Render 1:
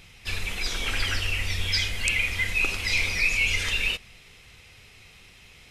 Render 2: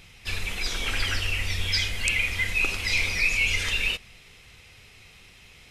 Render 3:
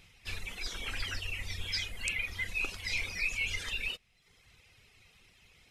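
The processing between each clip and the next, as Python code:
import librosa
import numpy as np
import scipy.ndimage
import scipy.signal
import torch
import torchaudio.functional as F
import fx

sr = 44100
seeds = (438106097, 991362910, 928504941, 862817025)

y1 = x
y2 = fx.dereverb_blind(y1, sr, rt60_s=0.88)
y2 = y2 * librosa.db_to_amplitude(-8.5)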